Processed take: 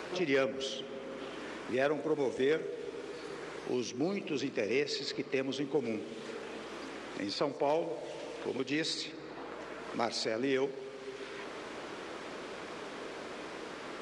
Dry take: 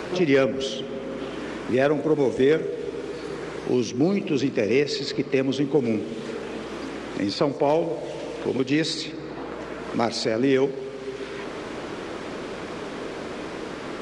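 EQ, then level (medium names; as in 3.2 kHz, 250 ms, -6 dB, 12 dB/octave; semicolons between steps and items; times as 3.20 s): bass shelf 310 Hz -10 dB; -7.0 dB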